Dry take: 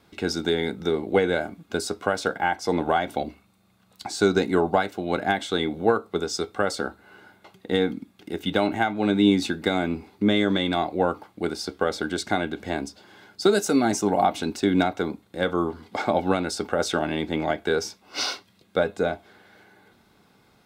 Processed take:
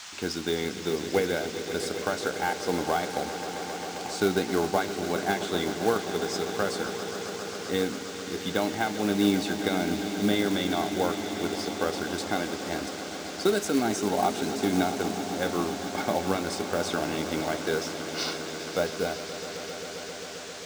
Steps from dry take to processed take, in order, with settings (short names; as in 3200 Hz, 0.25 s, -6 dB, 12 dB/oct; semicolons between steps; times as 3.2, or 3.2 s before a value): swelling echo 0.133 s, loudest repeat 5, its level -14 dB; band noise 740–7200 Hz -38 dBFS; short-mantissa float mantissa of 2-bit; gain -5 dB